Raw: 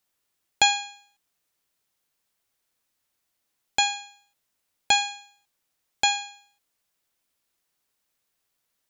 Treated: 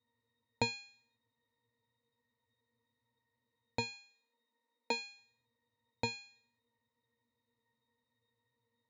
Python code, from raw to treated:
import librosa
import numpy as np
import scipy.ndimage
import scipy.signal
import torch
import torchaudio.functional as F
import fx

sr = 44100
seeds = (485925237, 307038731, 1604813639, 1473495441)

y = fx.highpass(x, sr, hz=250.0, slope=24, at=(3.93, 5.18), fade=0.02)
y = fx.octave_resonator(y, sr, note='A#', decay_s=0.16)
y = F.gain(torch.from_numpy(y), 15.5).numpy()